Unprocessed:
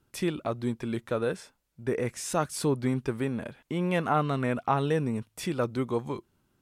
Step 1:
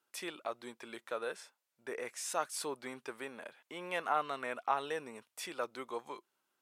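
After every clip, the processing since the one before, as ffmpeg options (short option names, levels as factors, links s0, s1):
-af "highpass=640,volume=0.596"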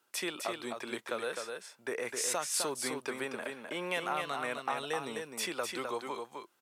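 -filter_complex "[0:a]acrossover=split=170|3000[s0][s1][s2];[s1]acompressor=threshold=0.00891:ratio=4[s3];[s0][s3][s2]amix=inputs=3:normalize=0,aecho=1:1:257:0.562,volume=2.37"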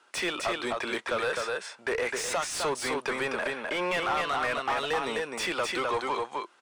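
-filter_complex "[0:a]aresample=22050,aresample=44100,asplit=2[s0][s1];[s1]highpass=f=720:p=1,volume=14.1,asoftclip=type=tanh:threshold=0.133[s2];[s0][s2]amix=inputs=2:normalize=0,lowpass=f=2400:p=1,volume=0.501,volume=0.891"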